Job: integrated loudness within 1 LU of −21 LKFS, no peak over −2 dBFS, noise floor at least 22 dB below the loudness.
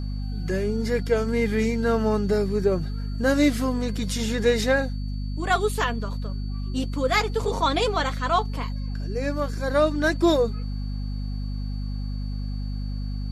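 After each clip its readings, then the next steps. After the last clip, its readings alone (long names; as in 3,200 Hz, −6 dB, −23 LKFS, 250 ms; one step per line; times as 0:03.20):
mains hum 50 Hz; hum harmonics up to 250 Hz; level of the hum −26 dBFS; interfering tone 4,500 Hz; level of the tone −49 dBFS; integrated loudness −25.5 LKFS; sample peak −8.0 dBFS; target loudness −21.0 LKFS
→ hum removal 50 Hz, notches 5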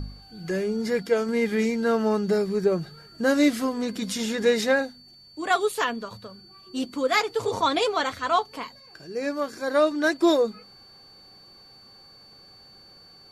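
mains hum none found; interfering tone 4,500 Hz; level of the tone −49 dBFS
→ notch filter 4,500 Hz, Q 30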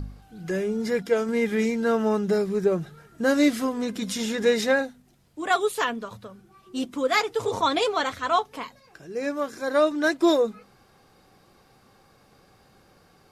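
interfering tone none found; integrated loudness −25.0 LKFS; sample peak −9.5 dBFS; target loudness −21.0 LKFS
→ level +4 dB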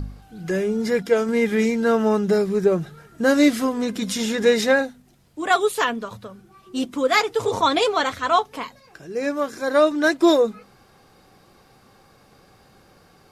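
integrated loudness −21.0 LKFS; sample peak −5.5 dBFS; background noise floor −55 dBFS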